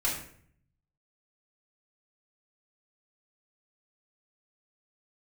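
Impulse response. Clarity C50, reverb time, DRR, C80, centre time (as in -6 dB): 5.0 dB, 0.60 s, -6.5 dB, 8.5 dB, 37 ms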